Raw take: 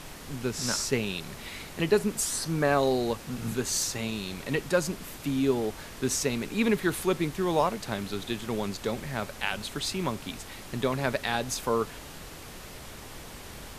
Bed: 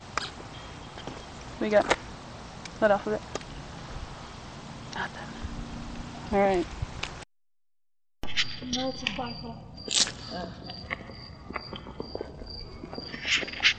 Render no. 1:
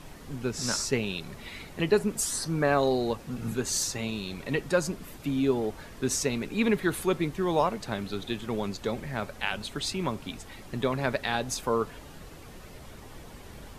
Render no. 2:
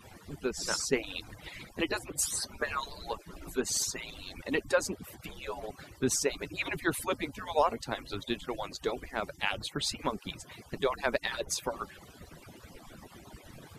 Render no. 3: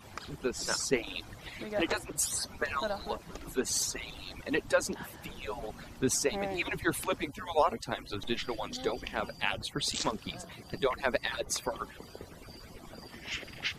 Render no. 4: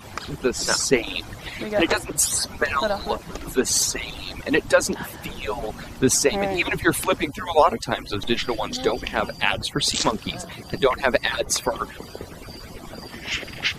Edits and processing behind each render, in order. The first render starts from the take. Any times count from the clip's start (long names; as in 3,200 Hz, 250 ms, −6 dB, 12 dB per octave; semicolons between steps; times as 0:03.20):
broadband denoise 8 dB, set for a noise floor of −44 dBFS
harmonic-percussive split with one part muted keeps percussive
mix in bed −12.5 dB
level +10.5 dB; brickwall limiter −3 dBFS, peak gain reduction 1.5 dB